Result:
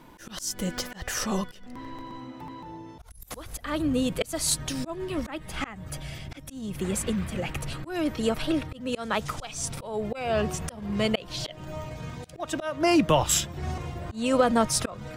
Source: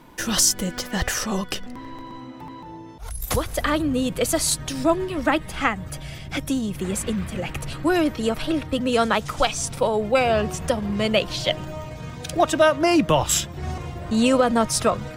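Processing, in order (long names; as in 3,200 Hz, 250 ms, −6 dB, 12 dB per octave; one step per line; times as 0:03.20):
volume swells 286 ms
level −2.5 dB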